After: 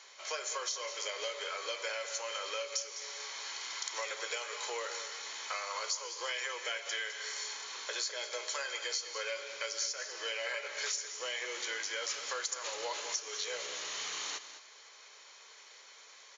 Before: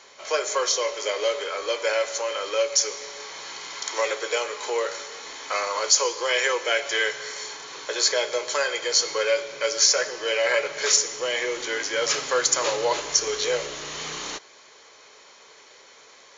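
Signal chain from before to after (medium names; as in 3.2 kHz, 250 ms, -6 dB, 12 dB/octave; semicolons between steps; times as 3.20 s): high-pass 1.3 kHz 6 dB/octave; compression 6:1, threshold -31 dBFS, peak gain reduction 16.5 dB; on a send: delay 206 ms -12 dB; on the sum: trim -3.5 dB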